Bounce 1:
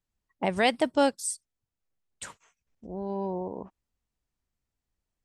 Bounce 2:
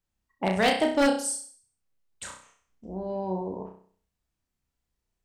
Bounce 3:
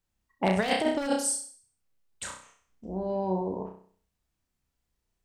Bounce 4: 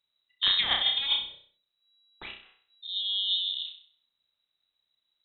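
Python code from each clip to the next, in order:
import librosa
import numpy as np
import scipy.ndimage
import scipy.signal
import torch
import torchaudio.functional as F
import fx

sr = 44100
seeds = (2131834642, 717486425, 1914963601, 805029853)

y1 = fx.room_flutter(x, sr, wall_m=5.5, rt60_s=0.49)
y1 = 10.0 ** (-14.0 / 20.0) * (np.abs((y1 / 10.0 ** (-14.0 / 20.0) + 3.0) % 4.0 - 2.0) - 1.0)
y2 = fx.over_compress(y1, sr, threshold_db=-24.0, ratio=-0.5)
y3 = fx.freq_invert(y2, sr, carrier_hz=3900)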